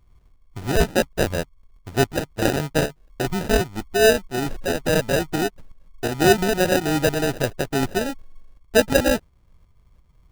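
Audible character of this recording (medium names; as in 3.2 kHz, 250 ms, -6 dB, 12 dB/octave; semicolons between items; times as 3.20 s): tremolo saw up 2.8 Hz, depth 50%; aliases and images of a low sample rate 1.1 kHz, jitter 0%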